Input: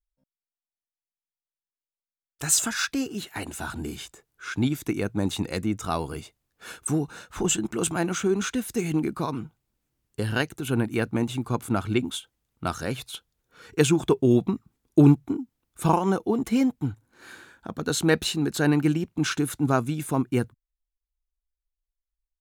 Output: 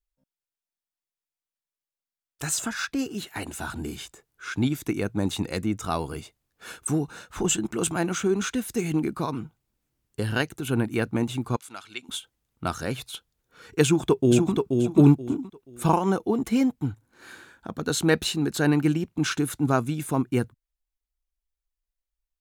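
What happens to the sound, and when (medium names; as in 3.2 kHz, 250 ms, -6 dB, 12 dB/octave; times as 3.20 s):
2.49–2.99 s: treble shelf 2.3 kHz -7 dB
11.56–12.09 s: band-pass filter 4.8 kHz, Q 0.78
13.83–14.53 s: echo throw 480 ms, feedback 25%, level -4 dB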